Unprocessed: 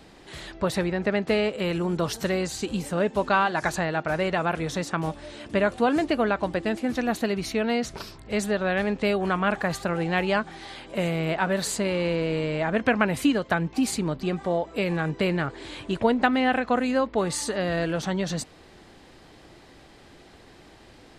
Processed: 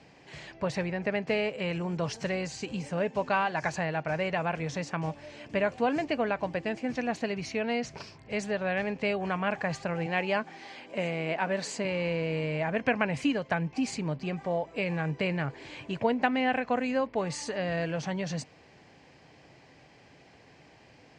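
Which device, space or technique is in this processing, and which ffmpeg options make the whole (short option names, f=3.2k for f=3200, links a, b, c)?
car door speaker: -filter_complex "[0:a]asettb=1/sr,asplit=3[a][b][c];[a]atrim=end=10.064[d];[b]atrim=start=10.06:end=11.85,asetpts=PTS-STARTPTS,afade=t=in:d=0.004:c=qsin,afade=t=out:st=1.786:d=0.004:c=qsin,lowshelf=f=170:t=q:w=1.5:g=-8.5[e];[c]atrim=start=11.846[f];[d][e]acrossfade=d=0.004:c1=hsin:c2=qsin[g];[g][f]acrossfade=d=0.004:c1=qsin:c2=hsin,highpass=98,equalizer=f=140:t=q:w=4:g=5,equalizer=f=210:t=q:w=4:g=-4,equalizer=f=350:t=q:w=4:g=-7,equalizer=f=1.3k:t=q:w=4:g=-7,equalizer=f=2.4k:t=q:w=4:g=4,equalizer=f=3.7k:t=q:w=4:g=-9,lowpass=f=6.7k:w=0.5412,lowpass=f=6.7k:w=1.3066,volume=-3.5dB"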